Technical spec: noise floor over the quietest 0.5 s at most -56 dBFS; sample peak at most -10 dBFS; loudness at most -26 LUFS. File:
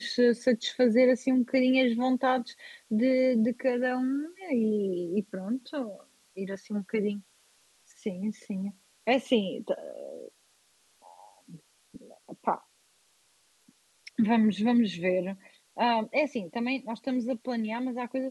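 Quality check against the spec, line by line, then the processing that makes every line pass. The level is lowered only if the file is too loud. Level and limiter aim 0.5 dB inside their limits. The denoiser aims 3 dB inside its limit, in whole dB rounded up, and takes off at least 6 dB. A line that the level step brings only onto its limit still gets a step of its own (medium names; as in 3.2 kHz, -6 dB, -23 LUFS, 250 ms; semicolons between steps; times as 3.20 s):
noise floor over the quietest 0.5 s -67 dBFS: pass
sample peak -11.5 dBFS: pass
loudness -28.5 LUFS: pass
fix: none needed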